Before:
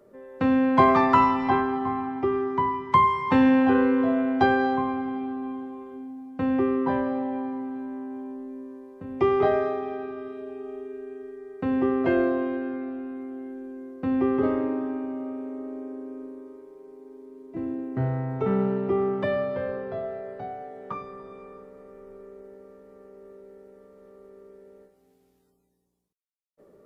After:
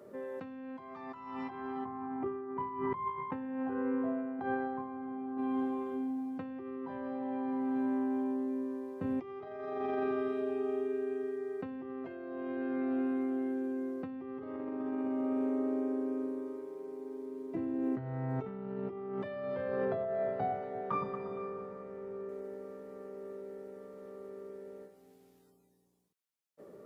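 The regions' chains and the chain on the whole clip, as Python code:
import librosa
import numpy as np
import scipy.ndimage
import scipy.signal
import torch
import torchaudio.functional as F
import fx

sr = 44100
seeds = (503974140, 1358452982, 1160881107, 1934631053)

y = fx.chain(x, sr, fx.lowpass(hz=1600.0, slope=12),
    fx.over_compress(threshold_db=-27.0, ratio=-0.5), at=(1.85, 5.38))
y = fx.chain(y, sr, fx.lowpass(hz=2600.0, slope=6),
    fx.echo_alternate(ms=116, hz=990.0, feedback_pct=58, wet_db=-7), at=(19.85, 22.29))
y = scipy.signal.sosfilt(scipy.signal.butter(2, 97.0, 'highpass', fs=sr, output='sos'), y)
y = fx.over_compress(y, sr, threshold_db=-34.0, ratio=-1.0)
y = F.gain(torch.from_numpy(y), -3.0).numpy()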